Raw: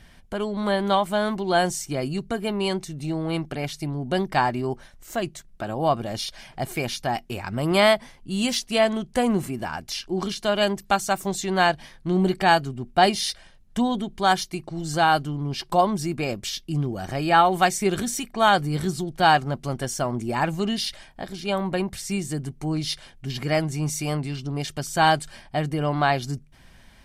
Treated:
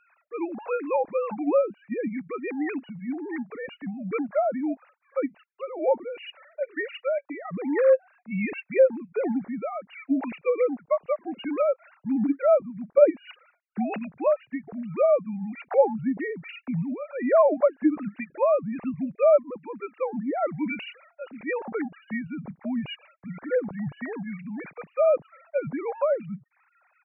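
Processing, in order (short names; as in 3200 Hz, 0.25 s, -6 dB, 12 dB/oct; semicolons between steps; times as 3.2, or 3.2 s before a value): sine-wave speech; pitch shift -4 st; treble ducked by the level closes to 960 Hz, closed at -17.5 dBFS; gain -1.5 dB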